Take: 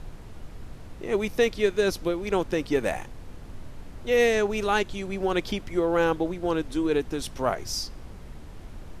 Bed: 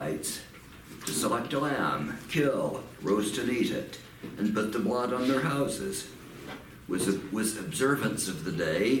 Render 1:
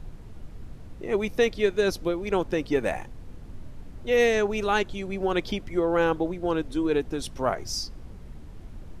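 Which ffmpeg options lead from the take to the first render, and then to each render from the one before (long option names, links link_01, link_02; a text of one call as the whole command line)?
ffmpeg -i in.wav -af "afftdn=noise_reduction=6:noise_floor=-43" out.wav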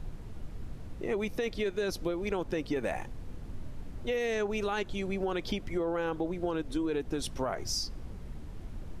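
ffmpeg -i in.wav -af "alimiter=limit=-18dB:level=0:latency=1:release=11,acompressor=threshold=-28dB:ratio=6" out.wav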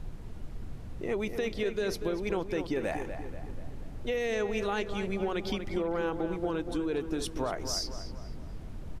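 ffmpeg -i in.wav -filter_complex "[0:a]asplit=2[link_01][link_02];[link_02]adelay=241,lowpass=frequency=2900:poles=1,volume=-8.5dB,asplit=2[link_03][link_04];[link_04]adelay=241,lowpass=frequency=2900:poles=1,volume=0.53,asplit=2[link_05][link_06];[link_06]adelay=241,lowpass=frequency=2900:poles=1,volume=0.53,asplit=2[link_07][link_08];[link_08]adelay=241,lowpass=frequency=2900:poles=1,volume=0.53,asplit=2[link_09][link_10];[link_10]adelay=241,lowpass=frequency=2900:poles=1,volume=0.53,asplit=2[link_11][link_12];[link_12]adelay=241,lowpass=frequency=2900:poles=1,volume=0.53[link_13];[link_01][link_03][link_05][link_07][link_09][link_11][link_13]amix=inputs=7:normalize=0" out.wav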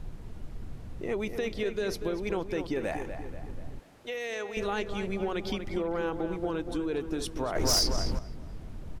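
ffmpeg -i in.wav -filter_complex "[0:a]asettb=1/sr,asplit=3[link_01][link_02][link_03];[link_01]atrim=end=3.794[link_04];[link_02]atrim=start=3.79:end=4.57,asetpts=PTS-STARTPTS,afade=type=in:duration=0.004:curve=qsin,afade=type=out:start_time=0.776:duration=0.004:curve=qsin,highpass=frequency=770:poles=1[link_05];[link_03]atrim=start=4.566[link_06];[link_04][link_05]acrossfade=duration=0.004:curve1=hsin:curve2=qsin[link_07];[link_07][link_06]acrossfade=duration=0.004:curve1=qsin:curve2=hsin,asettb=1/sr,asplit=3[link_08][link_09][link_10];[link_08]atrim=end=7.554[link_11];[link_09]atrim=start=7.55:end=8.19,asetpts=PTS-STARTPTS,afade=type=in:duration=0.004:curve=qsin,afade=type=out:start_time=0.636:duration=0.004:curve=qsin,aeval=exprs='0.106*sin(PI/2*2.24*val(0)/0.106)':channel_layout=same[link_12];[link_10]atrim=start=8.186[link_13];[link_11][link_12]acrossfade=duration=0.004:curve1=hsin:curve2=qsin[link_14];[link_14][link_13]acrossfade=duration=0.004:curve1=qsin:curve2=hsin" out.wav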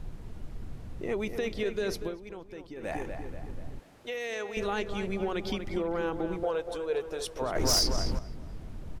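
ffmpeg -i in.wav -filter_complex "[0:a]asettb=1/sr,asplit=3[link_01][link_02][link_03];[link_01]atrim=end=6.434[link_04];[link_02]atrim=start=6.43:end=7.42,asetpts=PTS-STARTPTS,afade=type=in:duration=0.004:curve=qsin,afade=type=out:start_time=0.986:duration=0.004:curve=qsin,lowshelf=frequency=380:width_type=q:width=3:gain=-9[link_05];[link_03]atrim=start=7.416[link_06];[link_04][link_05]acrossfade=duration=0.004:curve1=hsin:curve2=qsin[link_07];[link_07][link_06]acrossfade=duration=0.004:curve1=qsin:curve2=hsin,asplit=3[link_08][link_09][link_10];[link_08]atrim=end=2.18,asetpts=PTS-STARTPTS,afade=type=out:start_time=2:duration=0.18:silence=0.251189[link_11];[link_09]atrim=start=2.18:end=2.77,asetpts=PTS-STARTPTS,volume=-12dB[link_12];[link_10]atrim=start=2.77,asetpts=PTS-STARTPTS,afade=type=in:duration=0.18:silence=0.251189[link_13];[link_11][link_12][link_13]concat=n=3:v=0:a=1" out.wav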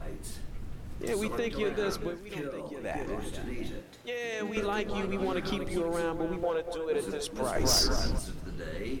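ffmpeg -i in.wav -i bed.wav -filter_complex "[1:a]volume=-11.5dB[link_01];[0:a][link_01]amix=inputs=2:normalize=0" out.wav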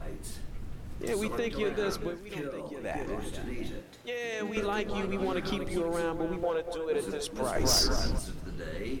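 ffmpeg -i in.wav -af anull out.wav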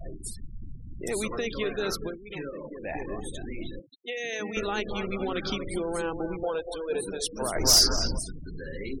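ffmpeg -i in.wav -af "equalizer=frequency=11000:width_type=o:width=3:gain=9,afftfilt=real='re*gte(hypot(re,im),0.0178)':imag='im*gte(hypot(re,im),0.0178)':win_size=1024:overlap=0.75" out.wav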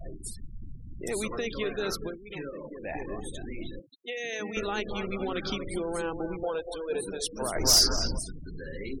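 ffmpeg -i in.wav -af "volume=-1.5dB" out.wav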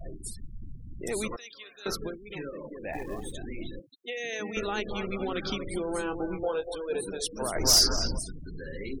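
ffmpeg -i in.wav -filter_complex "[0:a]asettb=1/sr,asplit=3[link_01][link_02][link_03];[link_01]atrim=end=1.364[link_04];[link_02]atrim=start=1.36:end=1.86,asetpts=PTS-STARTPTS,afade=type=in:duration=0.004:curve=qsin,afade=type=out:start_time=0.496:duration=0.004:curve=qsin,aderivative[link_05];[link_03]atrim=start=1.856[link_06];[link_04][link_05]acrossfade=duration=0.004:curve1=hsin:curve2=qsin[link_07];[link_07][link_06]acrossfade=duration=0.004:curve1=qsin:curve2=hsin,asettb=1/sr,asplit=3[link_08][link_09][link_10];[link_08]atrim=end=2.934[link_11];[link_09]atrim=start=2.93:end=3.33,asetpts=PTS-STARTPTS,afade=type=in:duration=0.004:curve=qsin,afade=type=out:start_time=0.396:duration=0.004:curve=qsin,acrusher=bits=6:mode=log:mix=0:aa=0.000001[link_12];[link_10]atrim=start=3.326[link_13];[link_11][link_12]acrossfade=duration=0.004:curve1=hsin:curve2=qsin[link_14];[link_14][link_13]acrossfade=duration=0.004:curve1=qsin:curve2=hsin,asettb=1/sr,asplit=3[link_15][link_16][link_17];[link_15]atrim=end=5.874[link_18];[link_16]atrim=start=5.87:end=6.75,asetpts=PTS-STARTPTS,afade=type=in:duration=0.004:curve=qsin,afade=type=out:start_time=0.876:duration=0.004:curve=qsin,asplit=2[link_19][link_20];[link_20]adelay=21,volume=-7dB[link_21];[link_19][link_21]amix=inputs=2:normalize=0,atrim=end_sample=38808[link_22];[link_17]atrim=start=6.746[link_23];[link_18][link_22]acrossfade=duration=0.004:curve1=hsin:curve2=qsin[link_24];[link_24][link_23]acrossfade=duration=0.004:curve1=qsin:curve2=hsin" out.wav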